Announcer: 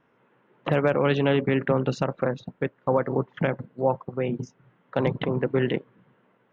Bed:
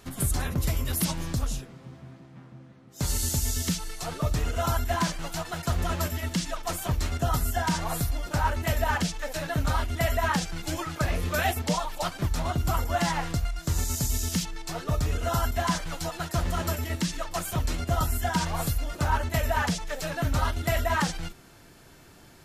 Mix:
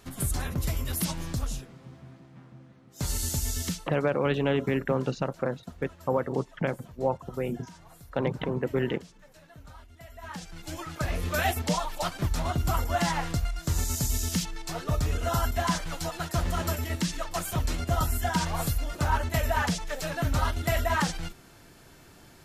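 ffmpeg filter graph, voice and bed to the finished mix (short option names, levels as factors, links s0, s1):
-filter_complex "[0:a]adelay=3200,volume=0.631[s0];[1:a]volume=9.44,afade=t=out:st=3.66:d=0.23:silence=0.1,afade=t=in:st=10.14:d=1.29:silence=0.0794328[s1];[s0][s1]amix=inputs=2:normalize=0"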